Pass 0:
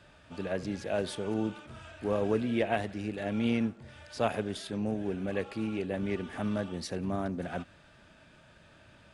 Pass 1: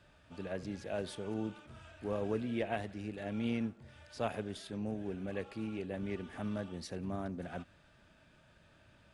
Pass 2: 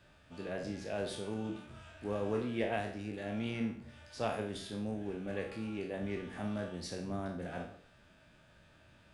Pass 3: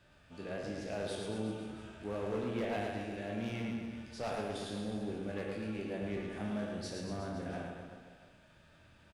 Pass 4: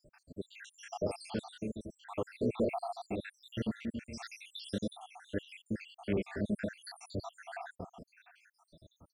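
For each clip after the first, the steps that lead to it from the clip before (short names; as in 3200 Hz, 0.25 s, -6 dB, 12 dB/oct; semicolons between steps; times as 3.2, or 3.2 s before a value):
low shelf 110 Hz +4 dB; gain -7 dB
spectral trails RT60 0.55 s; de-hum 46.98 Hz, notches 32
overloaded stage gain 30 dB; on a send: reverse bouncing-ball echo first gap 0.11 s, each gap 1.1×, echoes 5; on the sum: gain -2 dB
random spectral dropouts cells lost 82%; gain +7 dB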